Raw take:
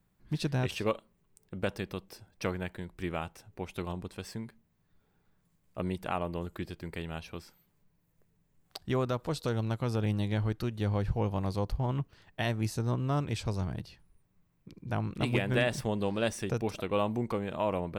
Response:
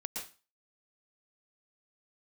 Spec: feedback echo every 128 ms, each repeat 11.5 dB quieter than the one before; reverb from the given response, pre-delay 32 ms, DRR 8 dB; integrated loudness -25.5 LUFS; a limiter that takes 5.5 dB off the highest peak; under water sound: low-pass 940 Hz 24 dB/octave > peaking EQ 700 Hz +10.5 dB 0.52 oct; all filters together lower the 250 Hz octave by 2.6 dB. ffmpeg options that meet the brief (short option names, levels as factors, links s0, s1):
-filter_complex "[0:a]equalizer=f=250:t=o:g=-4,alimiter=limit=0.0794:level=0:latency=1,aecho=1:1:128|256|384:0.266|0.0718|0.0194,asplit=2[s0][s1];[1:a]atrim=start_sample=2205,adelay=32[s2];[s1][s2]afir=irnorm=-1:irlink=0,volume=0.376[s3];[s0][s3]amix=inputs=2:normalize=0,lowpass=f=940:w=0.5412,lowpass=f=940:w=1.3066,equalizer=f=700:t=o:w=0.52:g=10.5,volume=2.51"